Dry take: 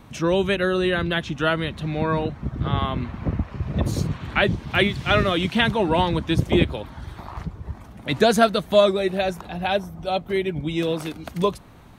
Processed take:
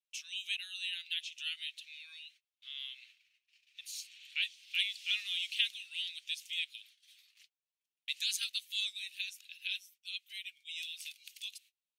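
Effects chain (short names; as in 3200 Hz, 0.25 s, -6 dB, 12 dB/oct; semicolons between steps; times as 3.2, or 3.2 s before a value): elliptic high-pass 2600 Hz, stop band 70 dB; gate -55 dBFS, range -31 dB; gain -5 dB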